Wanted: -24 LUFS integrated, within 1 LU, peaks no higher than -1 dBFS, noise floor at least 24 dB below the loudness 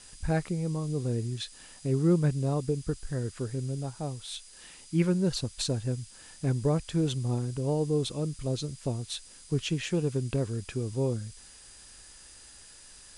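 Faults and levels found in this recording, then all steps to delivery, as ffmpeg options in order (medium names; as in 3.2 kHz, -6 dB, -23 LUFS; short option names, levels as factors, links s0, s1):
steady tone 4.9 kHz; tone level -58 dBFS; noise floor -52 dBFS; noise floor target -55 dBFS; loudness -31.0 LUFS; peak level -14.0 dBFS; loudness target -24.0 LUFS
-> -af "bandreject=f=4900:w=30"
-af "afftdn=nr=6:nf=-52"
-af "volume=2.24"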